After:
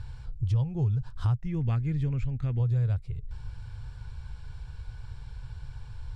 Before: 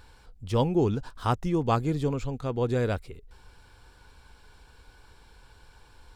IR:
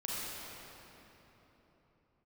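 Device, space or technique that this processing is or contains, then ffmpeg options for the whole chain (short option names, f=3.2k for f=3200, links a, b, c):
jukebox: -filter_complex "[0:a]asettb=1/sr,asplit=3[a][b][c];[a]atrim=end=1.354[d];[b]atrim=start=1.35:end=2.6,asetpts=PTS-STARTPTS,afade=t=in:d=0.004:c=qsin,afade=t=out:st=1.246:d=0.004:c=qsin,equalizer=f=125:t=o:w=1:g=-8,equalizer=f=250:t=o:w=1:g=9,equalizer=f=500:t=o:w=1:g=-4,equalizer=f=1k:t=o:w=1:g=-8,equalizer=f=2k:t=o:w=1:g=10,equalizer=f=4k:t=o:w=1:g=-5,equalizer=f=8k:t=o:w=1:g=-5[e];[c]atrim=start=2.596[f];[d][e]acrossfade=d=0.004:c1=hsin:c2=qsin[g];[g][f]acrossfade=d=0.004:c1=qsin:c2=hsin,lowpass=7.9k,lowshelf=f=180:t=q:w=3:g=13.5,acompressor=threshold=-27dB:ratio=4"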